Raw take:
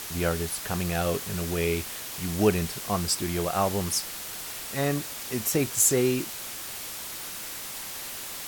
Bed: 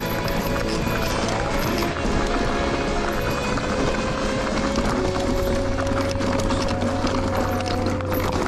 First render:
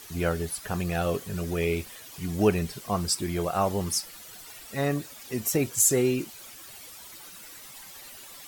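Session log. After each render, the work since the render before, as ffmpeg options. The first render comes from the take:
-af "afftdn=nr=12:nf=-38"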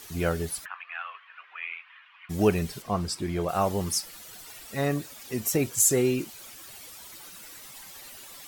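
-filter_complex "[0:a]asplit=3[s0][s1][s2];[s0]afade=t=out:st=0.64:d=0.02[s3];[s1]asuperpass=centerf=1700:order=8:qfactor=0.92,afade=t=in:st=0.64:d=0.02,afade=t=out:st=2.29:d=0.02[s4];[s2]afade=t=in:st=2.29:d=0.02[s5];[s3][s4][s5]amix=inputs=3:normalize=0,asettb=1/sr,asplit=3[s6][s7][s8];[s6]atrim=end=2.824[s9];[s7]atrim=start=2.82:end=3.49,asetpts=PTS-STARTPTS,afade=t=in:d=0.004:c=qsin,afade=t=out:st=0.666:d=0.004:c=qsin,lowpass=f=3200:p=1[s10];[s8]atrim=start=3.486[s11];[s9][s10]acrossfade=d=0.004:c1=hsin:c2=qsin[s12];[s12][s11]acrossfade=d=0.004:c1=qsin:c2=hsin"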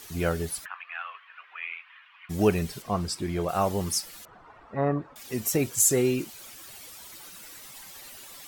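-filter_complex "[0:a]asettb=1/sr,asplit=3[s0][s1][s2];[s0]atrim=end=4.254[s3];[s1]atrim=start=4.25:end=5.16,asetpts=PTS-STARTPTS,afade=t=in:d=0.004:c=qsin,afade=t=out:st=0.906:d=0.004:c=qsin,lowpass=f=1100:t=q:w=2.2[s4];[s2]atrim=start=5.156[s5];[s3][s4]acrossfade=d=0.004:c1=hsin:c2=qsin[s6];[s6][s5]acrossfade=d=0.004:c1=qsin:c2=hsin"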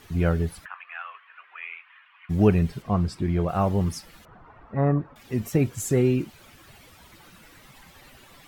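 -af "bass=f=250:g=9,treble=f=4000:g=-13"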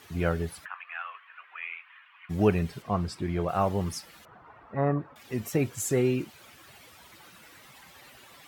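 -af "highpass=100,equalizer=f=180:t=o:w=2.1:g=-6"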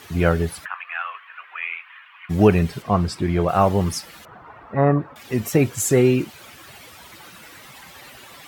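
-af "volume=2.82,alimiter=limit=0.708:level=0:latency=1"

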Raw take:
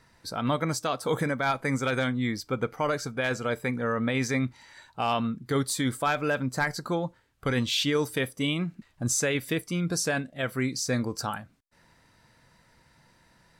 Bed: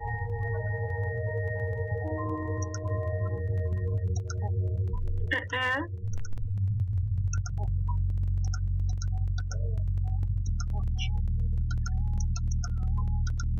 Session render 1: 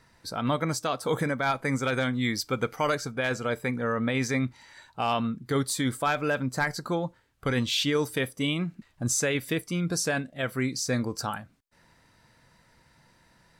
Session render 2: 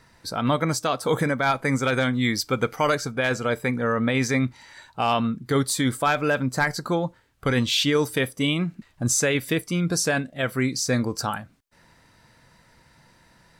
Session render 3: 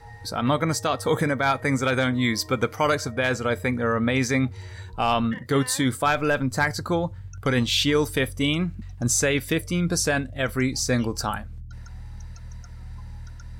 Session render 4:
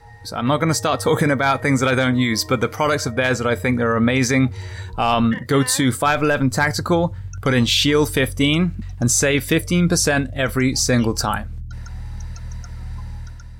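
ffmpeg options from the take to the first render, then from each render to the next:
-filter_complex "[0:a]asettb=1/sr,asplit=3[s0][s1][s2];[s0]atrim=end=2.134[s3];[s1]atrim=start=2.13:end=2.95,asetpts=PTS-STARTPTS,afade=t=in:d=0.004:c=qsin,afade=t=out:st=0.816:d=0.004:c=qsin,highshelf=f=2200:g=8.5[s4];[s2]atrim=start=2.946[s5];[s3][s4]acrossfade=d=0.004:c1=hsin:c2=qsin[s6];[s6][s5]acrossfade=d=0.004:c1=qsin:c2=hsin"
-af "volume=1.68"
-filter_complex "[1:a]volume=0.299[s0];[0:a][s0]amix=inputs=2:normalize=0"
-af "dynaudnorm=f=220:g=5:m=2.51,alimiter=limit=0.398:level=0:latency=1:release=22"

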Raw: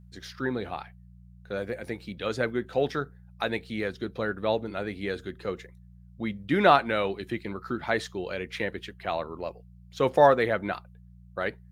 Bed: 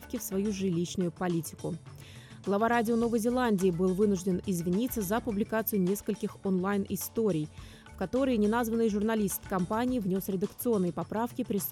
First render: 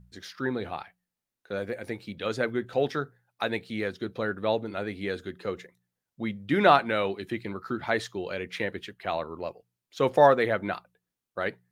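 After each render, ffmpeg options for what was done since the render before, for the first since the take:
-af "bandreject=f=60:t=h:w=4,bandreject=f=120:t=h:w=4,bandreject=f=180:t=h:w=4"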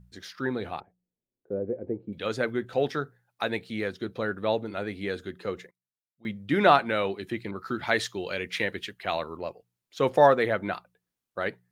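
-filter_complex "[0:a]asettb=1/sr,asplit=3[s0][s1][s2];[s0]atrim=end=0.804[s3];[s1]atrim=start=0.8:end=2.13,asetpts=PTS-STARTPTS,afade=t=in:d=0.004:c=qsin,afade=t=out:st=1.326:d=0.004:c=qsin,lowpass=f=420:t=q:w=1.8[s4];[s2]atrim=start=2.126[s5];[s3][s4]acrossfade=d=0.004:c1=hsin:c2=qsin[s6];[s6][s5]acrossfade=d=0.004:c1=qsin:c2=hsin,asettb=1/sr,asplit=3[s7][s8][s9];[s7]atrim=end=7.514[s10];[s8]atrim=start=7.51:end=9.37,asetpts=PTS-STARTPTS,afade=t=in:d=0.004:c=qsin,afade=t=out:st=1.856:d=0.004:c=qsin,adynamicequalizer=threshold=0.00708:dfrequency=1600:dqfactor=0.7:tfrequency=1600:tqfactor=0.7:attack=5:release=100:ratio=0.375:range=3:mode=boostabove:tftype=highshelf[s11];[s9]atrim=start=9.366[s12];[s10][s11]acrossfade=d=0.004:c1=hsin:c2=qsin[s13];[s13][s12]acrossfade=d=0.004:c1=qsin:c2=hsin,asplit=3[s14][s15][s16];[s14]atrim=end=5.71,asetpts=PTS-STARTPTS,afade=t=out:st=5.58:d=0.13:c=log:silence=0.0668344[s17];[s15]atrim=start=5.71:end=6.25,asetpts=PTS-STARTPTS,volume=0.0668[s18];[s16]atrim=start=6.25,asetpts=PTS-STARTPTS,afade=t=in:d=0.13:c=log:silence=0.0668344[s19];[s17][s18][s19]concat=n=3:v=0:a=1"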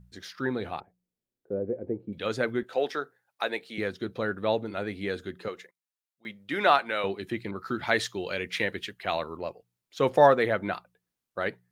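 -filter_complex "[0:a]asettb=1/sr,asplit=3[s0][s1][s2];[s0]atrim=end=2.634[s3];[s1]atrim=start=2.63:end=3.78,asetpts=PTS-STARTPTS,afade=t=in:d=0.004:c=qsin,afade=t=out:st=1.146:d=0.004:c=qsin,highpass=370[s4];[s2]atrim=start=3.776[s5];[s3][s4]acrossfade=d=0.004:c1=hsin:c2=qsin[s6];[s6][s5]acrossfade=d=0.004:c1=qsin:c2=hsin,asettb=1/sr,asplit=3[s7][s8][s9];[s7]atrim=end=5.484[s10];[s8]atrim=start=5.48:end=7.04,asetpts=PTS-STARTPTS,afade=t=in:d=0.004:c=qsin,afade=t=out:st=1.556:d=0.004:c=qsin,highpass=f=700:p=1[s11];[s9]atrim=start=7.036[s12];[s10][s11]acrossfade=d=0.004:c1=hsin:c2=qsin[s13];[s13][s12]acrossfade=d=0.004:c1=qsin:c2=hsin"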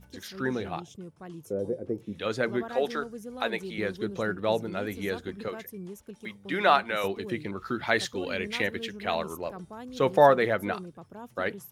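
-filter_complex "[1:a]volume=0.237[s0];[0:a][s0]amix=inputs=2:normalize=0"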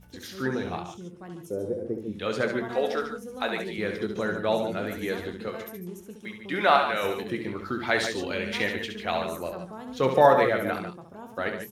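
-filter_complex "[0:a]asplit=2[s0][s1];[s1]adelay=23,volume=0.299[s2];[s0][s2]amix=inputs=2:normalize=0,aecho=1:1:68|141|150:0.447|0.237|0.266"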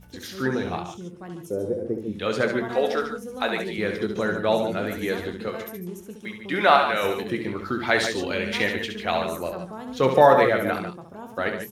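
-af "volume=1.5,alimiter=limit=0.708:level=0:latency=1"

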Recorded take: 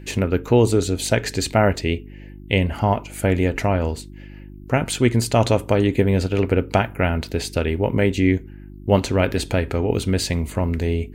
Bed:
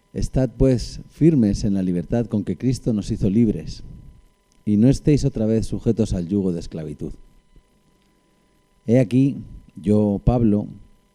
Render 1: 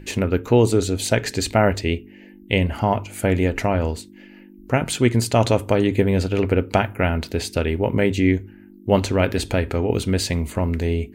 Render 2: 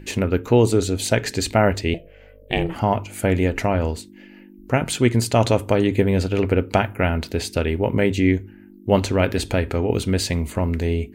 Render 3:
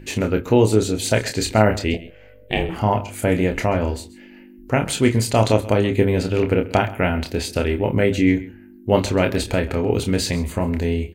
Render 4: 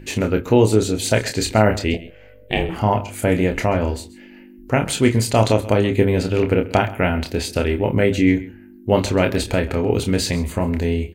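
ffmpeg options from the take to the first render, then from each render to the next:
-af "bandreject=f=50:t=h:w=4,bandreject=f=100:t=h:w=4,bandreject=f=150:t=h:w=4"
-filter_complex "[0:a]asettb=1/sr,asplit=3[s0][s1][s2];[s0]atrim=end=1.944[s3];[s1]atrim=start=1.94:end=2.76,asetpts=PTS-STARTPTS,afade=t=in:d=0.004:c=qsin,afade=t=out:st=0.816:d=0.004:c=qsin,aeval=exprs='val(0)*sin(2*PI*250*n/s)':c=same[s4];[s2]atrim=start=2.756[s5];[s3][s4]acrossfade=d=0.004:c1=hsin:c2=qsin[s6];[s6][s5]acrossfade=d=0.004:c1=qsin:c2=hsin"
-filter_complex "[0:a]asplit=2[s0][s1];[s1]adelay=28,volume=0.501[s2];[s0][s2]amix=inputs=2:normalize=0,aecho=1:1:132:0.119"
-af "volume=1.12,alimiter=limit=0.708:level=0:latency=1"

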